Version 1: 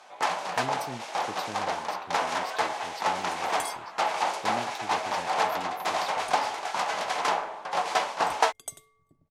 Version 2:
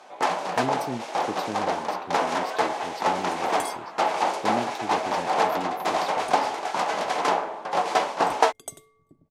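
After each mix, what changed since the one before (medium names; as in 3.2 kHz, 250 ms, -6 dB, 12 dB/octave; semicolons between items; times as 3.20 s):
master: add peaking EQ 300 Hz +9.5 dB 2.3 oct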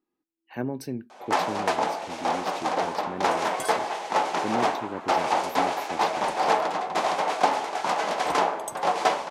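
first sound: entry +1.10 s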